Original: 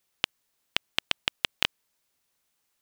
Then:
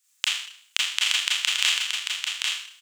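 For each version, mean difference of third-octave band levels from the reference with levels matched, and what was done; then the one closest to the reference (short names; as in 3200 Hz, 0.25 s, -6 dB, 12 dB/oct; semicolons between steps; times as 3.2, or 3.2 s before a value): 12.5 dB: Bessel high-pass 1500 Hz, order 4; bell 7400 Hz +12.5 dB 0.71 oct; on a send: echo 0.793 s -4.5 dB; on the sum: Schroeder reverb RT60 0.6 s, combs from 26 ms, DRR -5.5 dB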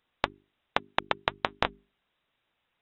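9.5 dB: flange 1 Hz, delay 0.9 ms, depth 5.2 ms, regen -62%; inverted band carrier 3800 Hz; compressor 3:1, threshold -31 dBFS, peak gain reduction 7 dB; notches 50/100/150/200/250/300/350/400 Hz; gain +8.5 dB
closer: second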